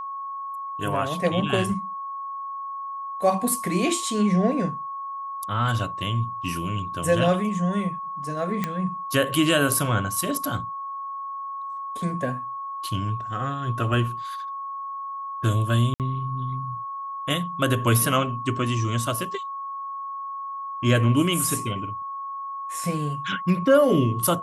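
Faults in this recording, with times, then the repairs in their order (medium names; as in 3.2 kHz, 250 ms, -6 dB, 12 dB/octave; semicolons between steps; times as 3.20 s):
whine 1.1 kHz -30 dBFS
8.64 s: pop -11 dBFS
15.94–16.00 s: dropout 58 ms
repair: de-click; band-stop 1.1 kHz, Q 30; interpolate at 15.94 s, 58 ms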